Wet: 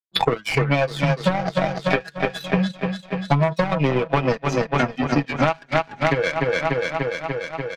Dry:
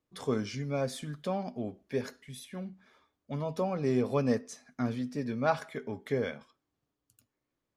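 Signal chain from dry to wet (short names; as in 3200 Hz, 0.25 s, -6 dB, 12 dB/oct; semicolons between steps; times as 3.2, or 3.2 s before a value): spectral noise reduction 23 dB; LPF 4600 Hz 24 dB/oct; bell 2300 Hz +5 dB 0.3 oct; feedback echo 0.293 s, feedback 59%, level -9.5 dB; compressor 5:1, threshold -42 dBFS, peak gain reduction 18 dB; power-law curve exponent 2; comb 6.1 ms, depth 53%; maximiser +34 dB; three-band squash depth 100%; gain -2 dB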